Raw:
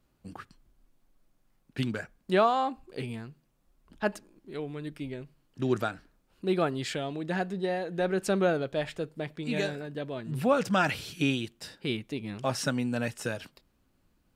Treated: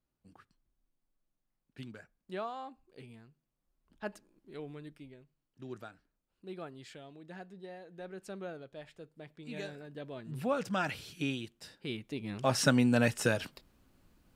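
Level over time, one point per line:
0:03.28 −15.5 dB
0:04.71 −7 dB
0:05.20 −17 dB
0:08.90 −17 dB
0:10.11 −7.5 dB
0:11.91 −7.5 dB
0:12.73 +4 dB

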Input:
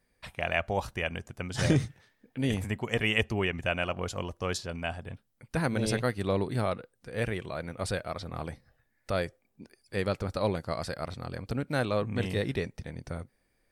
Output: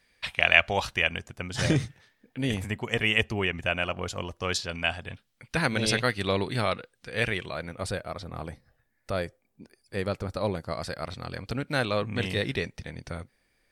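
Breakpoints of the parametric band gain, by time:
parametric band 3,200 Hz 2.5 octaves
0:00.82 +14.5 dB
0:01.37 +4 dB
0:04.26 +4 dB
0:04.78 +11.5 dB
0:07.30 +11.5 dB
0:07.95 −0.5 dB
0:10.61 −0.5 dB
0:11.28 +7.5 dB

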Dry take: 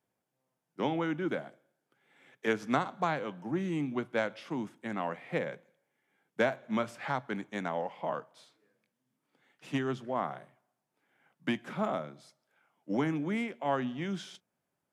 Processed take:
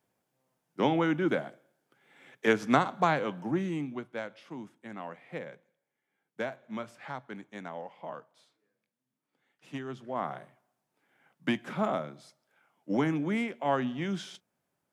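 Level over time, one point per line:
0:03.43 +5 dB
0:04.10 −6.5 dB
0:09.88 −6.5 dB
0:10.36 +2.5 dB

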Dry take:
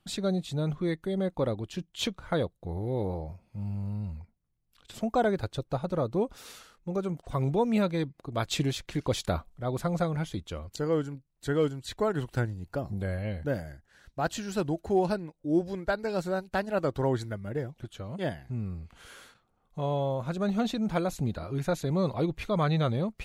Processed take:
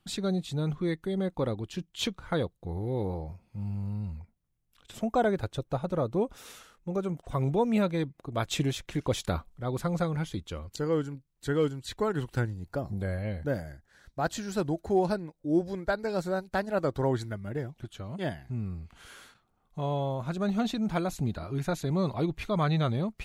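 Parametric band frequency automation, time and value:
parametric band −6 dB 0.27 octaves
610 Hz
from 0:04.19 4,500 Hz
from 0:09.22 650 Hz
from 0:12.57 2,800 Hz
from 0:17.11 510 Hz

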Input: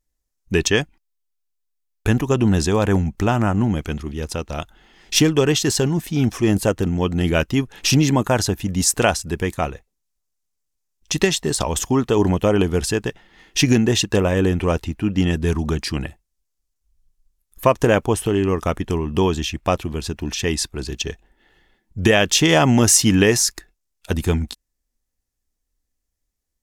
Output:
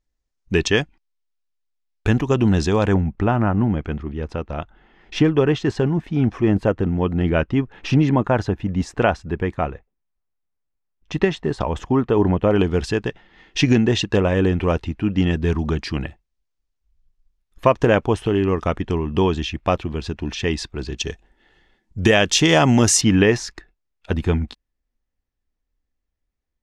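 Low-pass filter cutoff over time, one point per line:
5,000 Hz
from 0:02.94 2,000 Hz
from 0:12.51 3,900 Hz
from 0:20.98 7,300 Hz
from 0:23.01 3,000 Hz

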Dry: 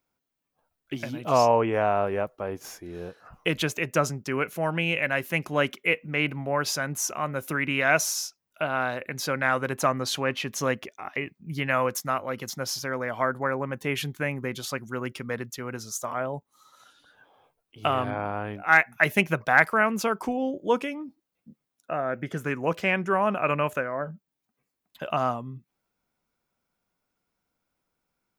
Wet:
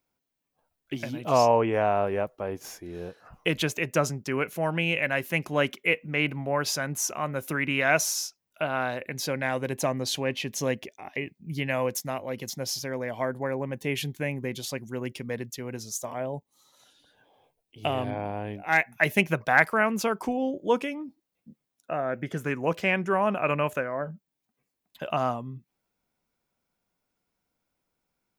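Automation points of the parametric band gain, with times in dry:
parametric band 1,300 Hz 0.56 octaves
0:08.79 −3.5 dB
0:09.54 −15 dB
0:18.59 −15 dB
0:19.36 −3.5 dB

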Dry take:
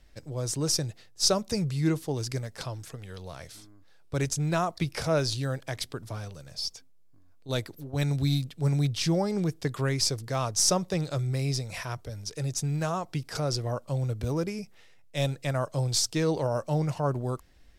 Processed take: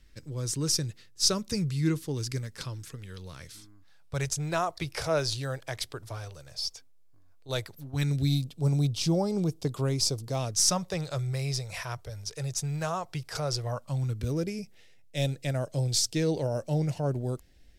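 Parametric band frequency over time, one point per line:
parametric band −13.5 dB 0.75 octaves
0:03.51 700 Hz
0:04.47 210 Hz
0:07.56 210 Hz
0:08.46 1,800 Hz
0:10.31 1,800 Hz
0:10.88 250 Hz
0:13.59 250 Hz
0:14.45 1,100 Hz

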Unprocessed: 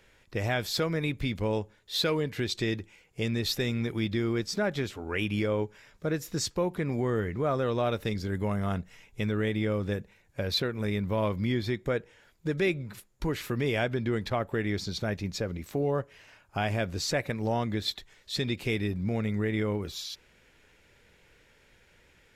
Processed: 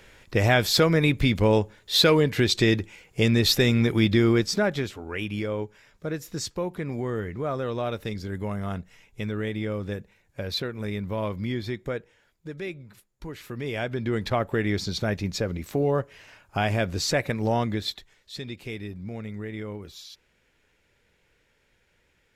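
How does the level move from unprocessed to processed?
0:04.30 +9 dB
0:05.12 −1 dB
0:11.85 −1 dB
0:12.49 −7.5 dB
0:13.32 −7.5 dB
0:14.29 +4.5 dB
0:17.62 +4.5 dB
0:18.34 −6 dB

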